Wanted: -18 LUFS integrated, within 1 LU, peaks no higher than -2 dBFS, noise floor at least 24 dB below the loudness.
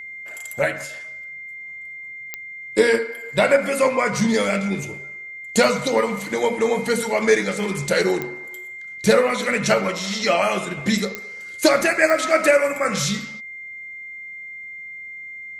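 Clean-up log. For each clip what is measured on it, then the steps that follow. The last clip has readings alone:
clicks 4; steady tone 2100 Hz; tone level -33 dBFS; loudness -20.0 LUFS; peak -2.5 dBFS; loudness target -18.0 LUFS
-> de-click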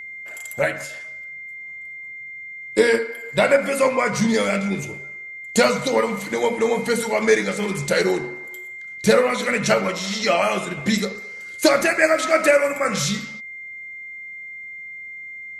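clicks 0; steady tone 2100 Hz; tone level -33 dBFS
-> notch 2100 Hz, Q 30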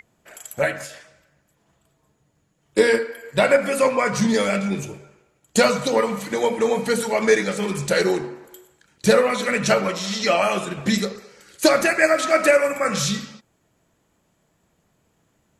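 steady tone none; loudness -20.5 LUFS; peak -2.5 dBFS; loudness target -18.0 LUFS
-> gain +2.5 dB; limiter -2 dBFS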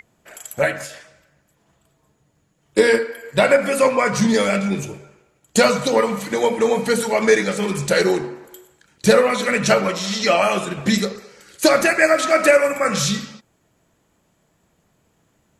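loudness -18.0 LUFS; peak -2.0 dBFS; noise floor -65 dBFS

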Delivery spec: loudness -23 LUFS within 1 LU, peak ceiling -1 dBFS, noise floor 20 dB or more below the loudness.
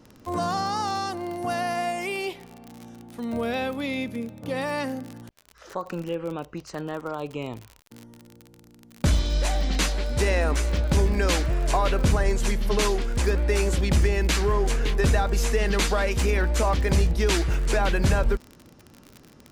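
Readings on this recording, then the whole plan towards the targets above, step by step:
ticks 43/s; loudness -25.5 LUFS; peak -12.0 dBFS; loudness target -23.0 LUFS
-> de-click; gain +2.5 dB

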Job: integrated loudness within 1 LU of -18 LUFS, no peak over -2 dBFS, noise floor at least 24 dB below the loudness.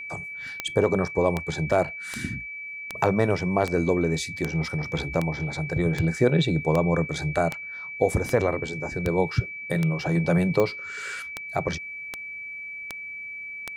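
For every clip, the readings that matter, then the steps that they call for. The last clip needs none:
clicks 18; steady tone 2300 Hz; tone level -34 dBFS; loudness -26.0 LUFS; peak -8.5 dBFS; loudness target -18.0 LUFS
-> de-click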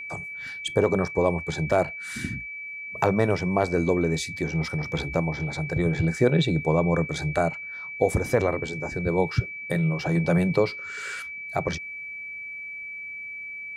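clicks 0; steady tone 2300 Hz; tone level -34 dBFS
-> notch 2300 Hz, Q 30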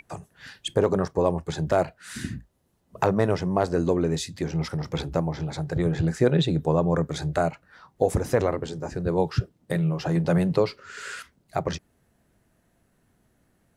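steady tone none; loudness -26.0 LUFS; peak -8.5 dBFS; loudness target -18.0 LUFS
-> gain +8 dB; limiter -2 dBFS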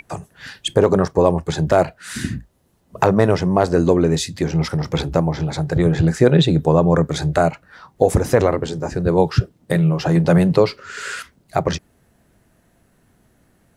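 loudness -18.0 LUFS; peak -2.0 dBFS; noise floor -60 dBFS

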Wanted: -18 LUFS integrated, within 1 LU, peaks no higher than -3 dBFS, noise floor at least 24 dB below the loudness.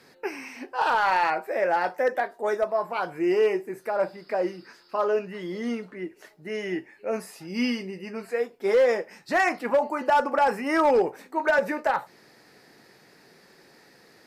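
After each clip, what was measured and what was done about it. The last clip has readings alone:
clipped 0.7%; flat tops at -15.0 dBFS; loudness -26.0 LUFS; peak -15.0 dBFS; loudness target -18.0 LUFS
-> clip repair -15 dBFS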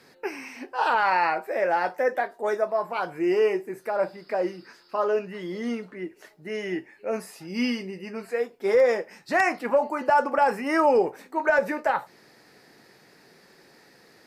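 clipped 0.0%; loudness -25.5 LUFS; peak -9.5 dBFS; loudness target -18.0 LUFS
-> gain +7.5 dB; limiter -3 dBFS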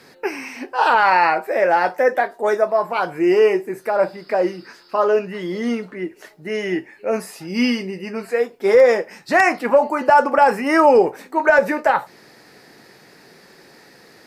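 loudness -18.0 LUFS; peak -3.0 dBFS; noise floor -49 dBFS

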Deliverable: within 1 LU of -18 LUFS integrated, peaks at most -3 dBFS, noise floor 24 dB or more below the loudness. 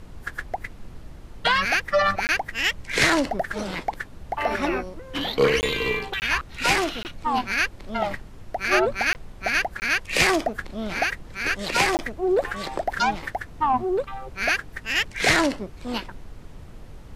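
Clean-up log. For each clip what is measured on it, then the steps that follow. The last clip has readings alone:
dropouts 7; longest dropout 19 ms; noise floor -43 dBFS; noise floor target -48 dBFS; loudness -24.0 LUFS; peak -5.0 dBFS; loudness target -18.0 LUFS
-> interpolate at 2.27/5.61/6.2/7.03/9.13/9.8/11.97, 19 ms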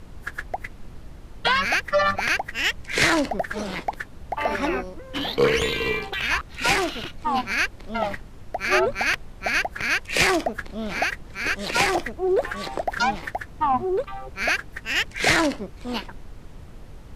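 dropouts 0; noise floor -43 dBFS; noise floor target -48 dBFS
-> noise print and reduce 6 dB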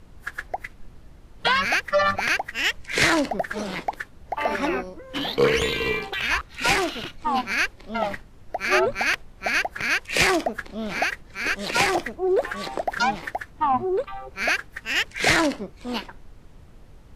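noise floor -48 dBFS; loudness -24.0 LUFS; peak -5.5 dBFS; loudness target -18.0 LUFS
-> gain +6 dB; limiter -3 dBFS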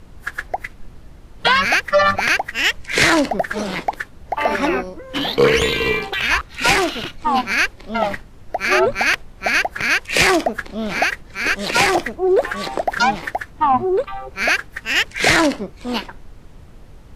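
loudness -18.0 LUFS; peak -3.0 dBFS; noise floor -42 dBFS

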